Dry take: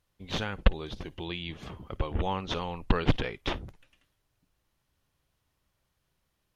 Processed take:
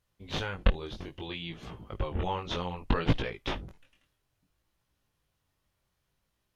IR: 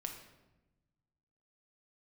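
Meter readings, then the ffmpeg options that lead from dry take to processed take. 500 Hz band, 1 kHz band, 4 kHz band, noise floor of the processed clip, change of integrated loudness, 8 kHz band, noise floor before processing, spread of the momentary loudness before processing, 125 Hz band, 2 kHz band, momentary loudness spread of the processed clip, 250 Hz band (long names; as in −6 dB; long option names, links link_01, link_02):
−1.0 dB, −1.0 dB, −1.5 dB, −79 dBFS, −1.0 dB, can't be measured, −78 dBFS, 12 LU, −1.0 dB, −1.5 dB, 12 LU, −1.5 dB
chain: -af "flanger=delay=17.5:depth=5.9:speed=0.61,volume=1.5dB"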